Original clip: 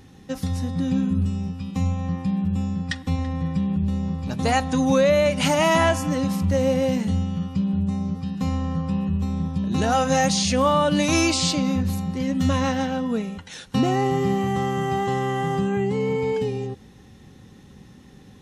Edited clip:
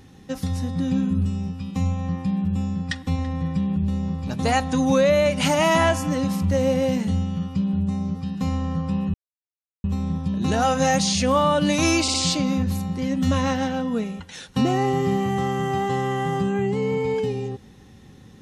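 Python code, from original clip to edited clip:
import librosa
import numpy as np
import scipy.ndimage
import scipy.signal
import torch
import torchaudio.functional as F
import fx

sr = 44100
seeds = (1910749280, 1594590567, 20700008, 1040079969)

y = fx.edit(x, sr, fx.insert_silence(at_s=9.14, length_s=0.7),
    fx.stutter(start_s=11.32, slice_s=0.06, count=3), tone=tone)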